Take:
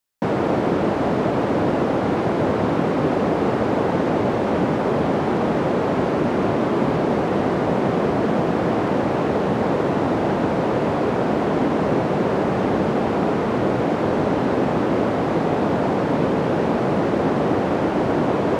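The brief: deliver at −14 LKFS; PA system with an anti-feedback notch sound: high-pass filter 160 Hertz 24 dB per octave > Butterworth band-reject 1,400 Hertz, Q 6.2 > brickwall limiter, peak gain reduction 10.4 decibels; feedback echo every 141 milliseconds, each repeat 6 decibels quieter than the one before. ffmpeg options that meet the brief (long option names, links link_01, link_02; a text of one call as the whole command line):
ffmpeg -i in.wav -af "highpass=frequency=160:width=0.5412,highpass=frequency=160:width=1.3066,asuperstop=centerf=1400:order=8:qfactor=6.2,aecho=1:1:141|282|423|564|705|846:0.501|0.251|0.125|0.0626|0.0313|0.0157,volume=11dB,alimiter=limit=-6dB:level=0:latency=1" out.wav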